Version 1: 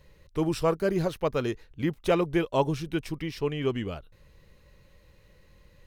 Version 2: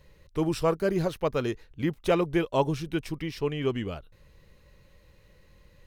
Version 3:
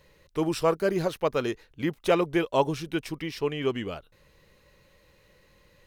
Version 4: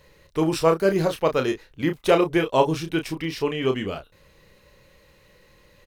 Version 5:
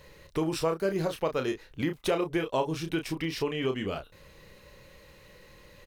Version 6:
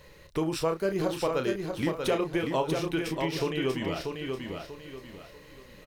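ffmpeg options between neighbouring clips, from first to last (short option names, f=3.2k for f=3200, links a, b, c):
-af anull
-af "lowshelf=f=160:g=-11,volume=2.5dB"
-filter_complex "[0:a]asplit=2[a][b];[b]adelay=31,volume=-7dB[c];[a][c]amix=inputs=2:normalize=0,volume=4dB"
-af "acompressor=threshold=-32dB:ratio=2.5,volume=2dB"
-af "aecho=1:1:639|1278|1917|2556:0.562|0.186|0.0612|0.0202"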